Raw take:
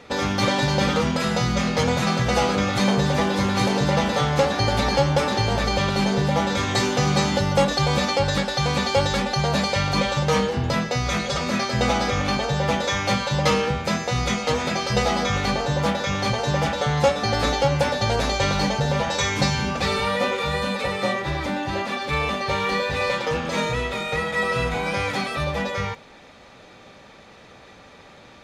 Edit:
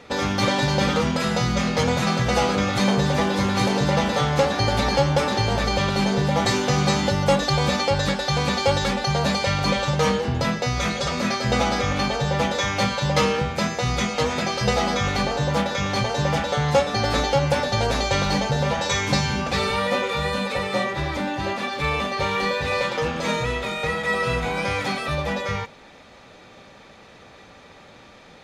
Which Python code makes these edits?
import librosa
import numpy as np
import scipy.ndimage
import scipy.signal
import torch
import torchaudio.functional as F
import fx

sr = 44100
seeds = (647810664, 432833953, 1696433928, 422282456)

y = fx.edit(x, sr, fx.cut(start_s=6.45, length_s=0.29), tone=tone)